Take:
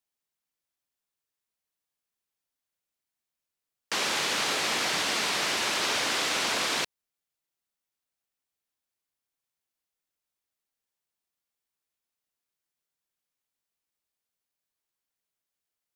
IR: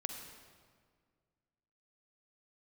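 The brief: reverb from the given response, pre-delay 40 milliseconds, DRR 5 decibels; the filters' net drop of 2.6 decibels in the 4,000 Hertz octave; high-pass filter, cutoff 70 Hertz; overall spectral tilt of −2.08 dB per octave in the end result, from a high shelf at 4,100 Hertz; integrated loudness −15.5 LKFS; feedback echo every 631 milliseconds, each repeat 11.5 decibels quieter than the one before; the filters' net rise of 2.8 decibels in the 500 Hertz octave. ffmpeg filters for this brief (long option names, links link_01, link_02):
-filter_complex "[0:a]highpass=70,equalizer=frequency=500:width_type=o:gain=3.5,equalizer=frequency=4000:width_type=o:gain=-5.5,highshelf=frequency=4100:gain=3.5,aecho=1:1:631|1262|1893:0.266|0.0718|0.0194,asplit=2[link_01][link_02];[1:a]atrim=start_sample=2205,adelay=40[link_03];[link_02][link_03]afir=irnorm=-1:irlink=0,volume=-4.5dB[link_04];[link_01][link_04]amix=inputs=2:normalize=0,volume=10.5dB"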